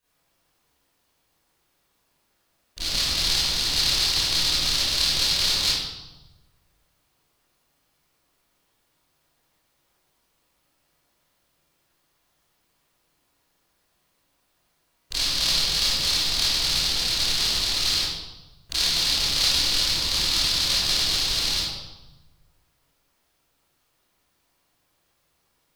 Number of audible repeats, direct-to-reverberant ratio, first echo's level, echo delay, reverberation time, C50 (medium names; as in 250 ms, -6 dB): no echo, -13.0 dB, no echo, no echo, 1.1 s, -3.5 dB